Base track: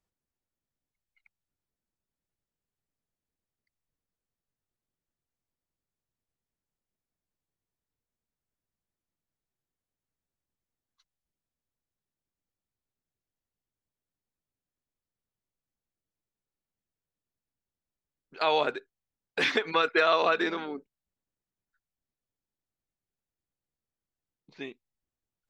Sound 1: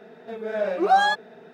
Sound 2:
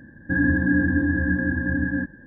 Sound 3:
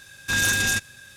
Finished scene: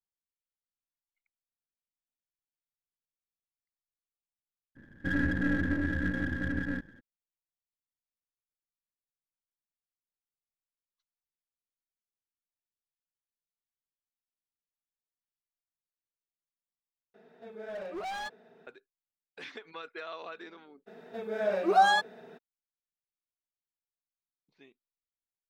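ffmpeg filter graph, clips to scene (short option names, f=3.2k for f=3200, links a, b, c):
-filter_complex "[1:a]asplit=2[a][b];[0:a]volume=-18.5dB[c];[2:a]aeval=exprs='if(lt(val(0),0),0.447*val(0),val(0))':c=same[d];[a]volume=22.5dB,asoftclip=hard,volume=-22.5dB[e];[b]highshelf=f=7.2k:g=6.5[f];[c]asplit=2[g][h];[g]atrim=end=17.144[i];[e]atrim=end=1.53,asetpts=PTS-STARTPTS,volume=-12.5dB[j];[h]atrim=start=18.666[k];[d]atrim=end=2.26,asetpts=PTS-STARTPTS,volume=-6.5dB,afade=t=in:d=0.02,afade=t=out:st=2.24:d=0.02,adelay=4750[l];[f]atrim=end=1.53,asetpts=PTS-STARTPTS,volume=-4dB,afade=t=in:d=0.02,afade=t=out:st=1.51:d=0.02,adelay=20860[m];[i][j]acrossfade=d=0.004:c1=hsin:c2=hsin[n];[n][k]acrossfade=d=0.004:c1=hsin:c2=hsin[o];[o][l][m]amix=inputs=3:normalize=0"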